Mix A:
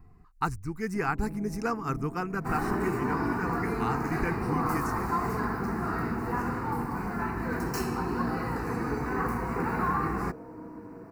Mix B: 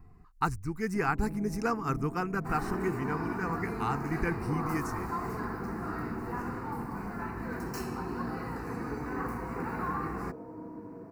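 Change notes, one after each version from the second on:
second sound -6.0 dB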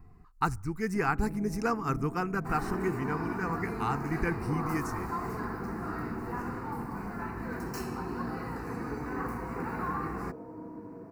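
reverb: on, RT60 0.60 s

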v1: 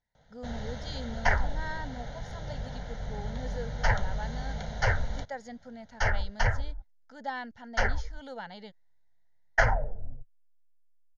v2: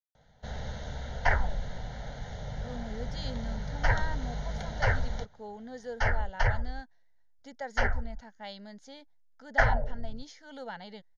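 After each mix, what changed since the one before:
speech: entry +2.30 s; second sound: add air absorption 97 m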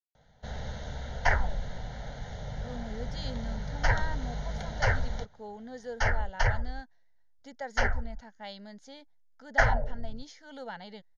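second sound: remove air absorption 97 m

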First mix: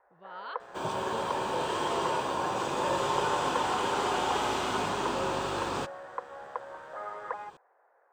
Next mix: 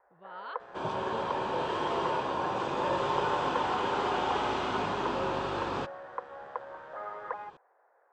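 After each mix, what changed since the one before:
master: add air absorption 150 m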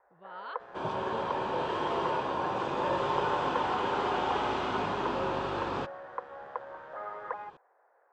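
second sound: add high shelf 6300 Hz -7 dB

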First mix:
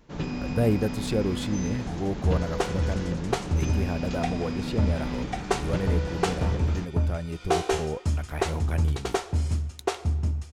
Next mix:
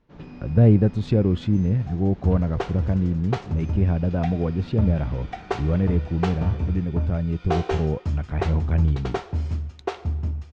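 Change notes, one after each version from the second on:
speech: add bell 120 Hz +11.5 dB 2.6 oct; first sound -9.0 dB; master: add air absorption 170 m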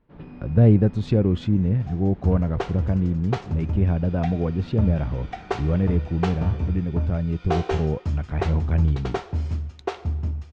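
first sound: add air absorption 250 m

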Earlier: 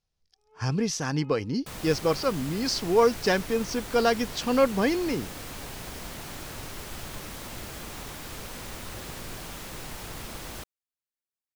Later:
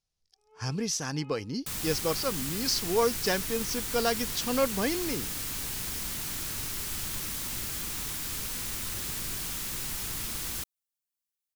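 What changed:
speech -5.5 dB; second sound: add bell 610 Hz -8.5 dB 1.2 oct; master: add high shelf 4600 Hz +11 dB

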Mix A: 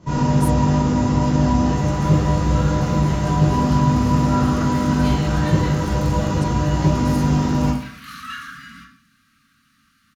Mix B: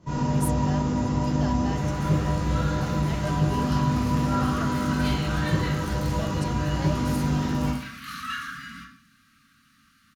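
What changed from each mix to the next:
first sound -7.0 dB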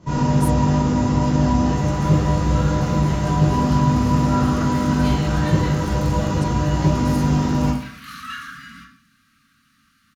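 first sound +6.5 dB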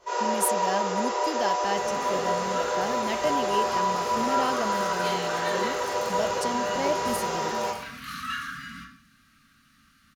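speech +8.5 dB; first sound: add steep high-pass 370 Hz 96 dB/oct

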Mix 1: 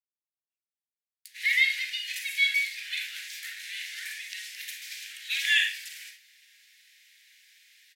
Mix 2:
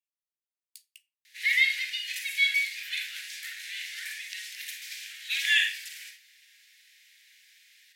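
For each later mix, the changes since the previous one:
speech: entry -0.50 s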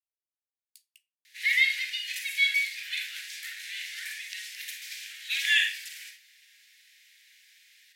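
speech -6.0 dB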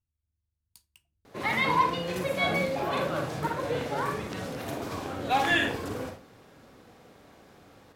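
background -6.0 dB; master: remove steep high-pass 1800 Hz 72 dB/oct

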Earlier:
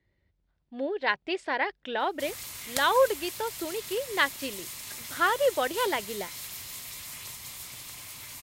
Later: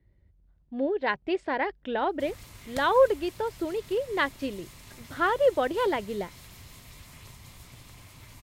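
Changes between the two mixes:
background -4.0 dB; master: add tilt -3 dB/oct

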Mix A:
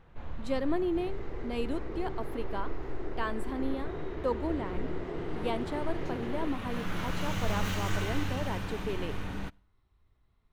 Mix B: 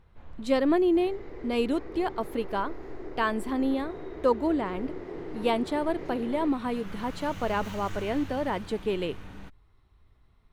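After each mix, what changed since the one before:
speech +10.0 dB; first sound -6.5 dB; reverb: off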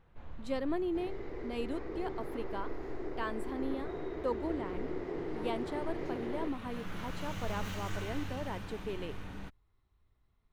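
speech -11.0 dB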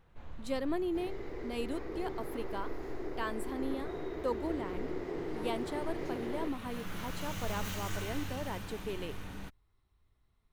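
master: remove LPF 3600 Hz 6 dB/oct

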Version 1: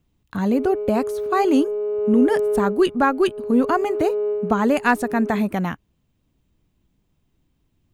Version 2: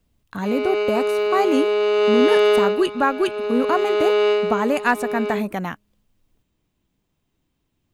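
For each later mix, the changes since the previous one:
background: remove ladder band-pass 400 Hz, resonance 50%; master: add low shelf 240 Hz -8 dB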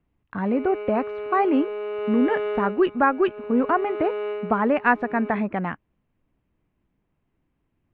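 background -11.0 dB; master: add LPF 2400 Hz 24 dB/oct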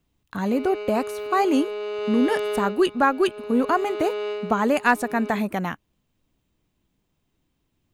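master: remove LPF 2400 Hz 24 dB/oct

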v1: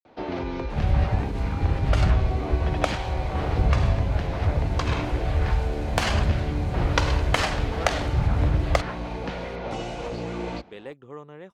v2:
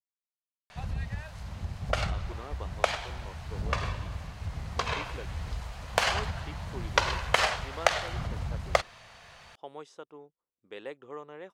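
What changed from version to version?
first sound: muted; master: add tone controls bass -13 dB, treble -1 dB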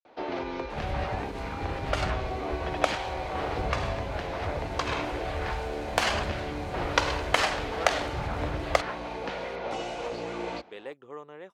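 first sound: unmuted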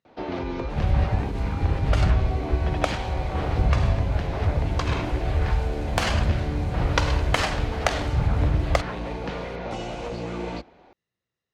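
speech: entry -1.80 s; master: add tone controls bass +13 dB, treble +1 dB

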